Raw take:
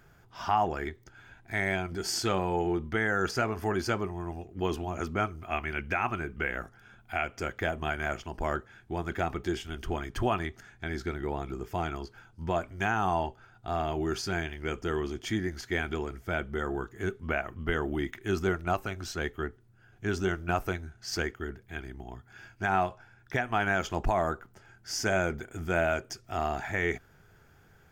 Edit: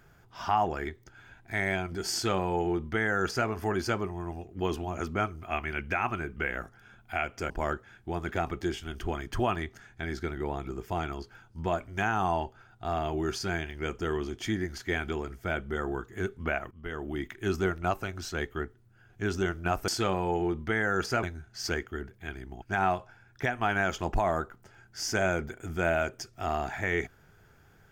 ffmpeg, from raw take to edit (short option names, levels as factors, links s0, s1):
-filter_complex "[0:a]asplit=6[s0][s1][s2][s3][s4][s5];[s0]atrim=end=7.502[s6];[s1]atrim=start=8.328:end=17.54,asetpts=PTS-STARTPTS,afade=t=out:st=9.208:d=0.004:c=hsin:silence=0.158489[s7];[s2]atrim=start=17.54:end=20.712,asetpts=PTS-STARTPTS,afade=t=in:d=0.67:silence=0.158489[s8];[s3]atrim=start=2.128:end=3.482[s9];[s4]atrim=start=20.708:end=22.102[s10];[s5]atrim=start=22.528[s11];[s7][s8]concat=n=2:v=0:a=1[s12];[s6][s12]acrossfade=d=0.004:c1=hsin:c2=hsin[s13];[s13][s9]acrossfade=d=0.004:c1=hsin:c2=hsin[s14];[s14][s10]acrossfade=d=0.004:c1=hsin:c2=hsin[s15];[s15][s11]acrossfade=d=0.004:c1=hsin:c2=hsin"